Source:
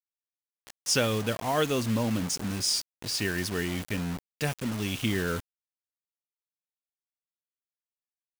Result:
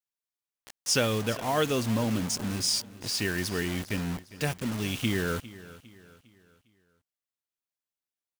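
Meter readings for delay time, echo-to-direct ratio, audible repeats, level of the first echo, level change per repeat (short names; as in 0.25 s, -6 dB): 0.404 s, -17.0 dB, 3, -18.0 dB, -7.5 dB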